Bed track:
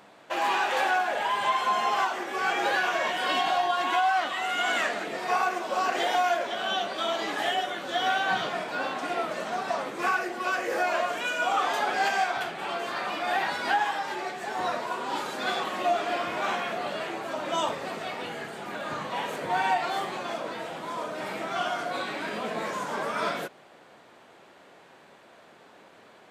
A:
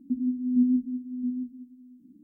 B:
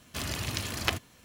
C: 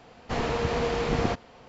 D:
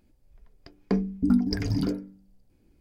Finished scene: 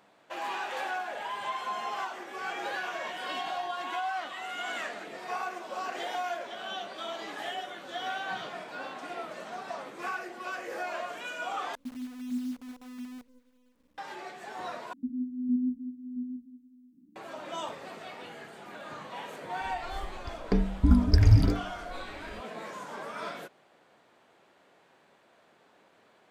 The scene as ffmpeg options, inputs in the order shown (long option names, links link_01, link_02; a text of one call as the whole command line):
ffmpeg -i bed.wav -i cue0.wav -i cue1.wav -i cue2.wav -i cue3.wav -filter_complex "[1:a]asplit=2[link_01][link_02];[0:a]volume=-9dB[link_03];[link_01]acrusher=bits=7:dc=4:mix=0:aa=0.000001[link_04];[4:a]lowshelf=frequency=120:width_type=q:width=1.5:gain=13.5[link_05];[link_03]asplit=3[link_06][link_07][link_08];[link_06]atrim=end=11.754[link_09];[link_04]atrim=end=2.23,asetpts=PTS-STARTPTS,volume=-11.5dB[link_10];[link_07]atrim=start=13.976:end=14.934[link_11];[link_02]atrim=end=2.23,asetpts=PTS-STARTPTS,volume=-6dB[link_12];[link_08]atrim=start=17.156[link_13];[link_05]atrim=end=2.8,asetpts=PTS-STARTPTS,afade=type=in:duration=0.004:curve=hsin,afade=type=out:start_time=2.796:duration=0.004:curve=hsin,adelay=19610[link_14];[link_09][link_10]acrossfade=duration=0.004:curve1=hsin:curve2=hsin[link_15];[link_15][link_11]acrossfade=duration=0.004:curve1=hsin:curve2=hsin[link_16];[link_16][link_12]acrossfade=duration=0.004:curve1=hsin:curve2=hsin[link_17];[link_17][link_13]acrossfade=duration=0.004:curve1=hsin:curve2=hsin[link_18];[link_18][link_14]amix=inputs=2:normalize=0" out.wav